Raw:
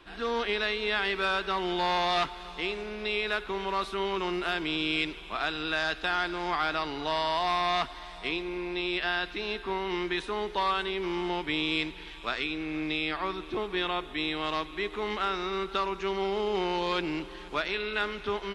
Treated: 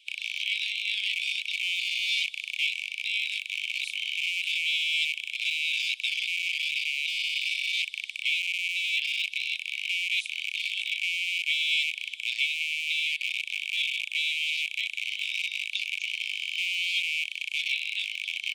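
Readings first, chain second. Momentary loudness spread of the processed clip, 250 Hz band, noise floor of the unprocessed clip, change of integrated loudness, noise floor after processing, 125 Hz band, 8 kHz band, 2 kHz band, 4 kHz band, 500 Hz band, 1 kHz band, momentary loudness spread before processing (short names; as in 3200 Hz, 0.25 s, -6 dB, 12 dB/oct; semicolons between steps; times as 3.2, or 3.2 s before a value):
4 LU, under -40 dB, -44 dBFS, +3.0 dB, -42 dBFS, under -40 dB, +11.5 dB, +5.0 dB, +6.5 dB, under -40 dB, under -40 dB, 6 LU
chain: rattling part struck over -48 dBFS, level -19 dBFS; harmonic-percussive split percussive +7 dB; rippled Chebyshev high-pass 2200 Hz, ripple 6 dB; gain +3 dB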